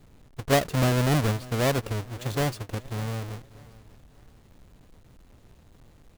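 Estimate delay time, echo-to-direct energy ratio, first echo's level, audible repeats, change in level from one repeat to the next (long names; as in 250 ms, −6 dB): 591 ms, −20.0 dB, −20.5 dB, 2, −9.5 dB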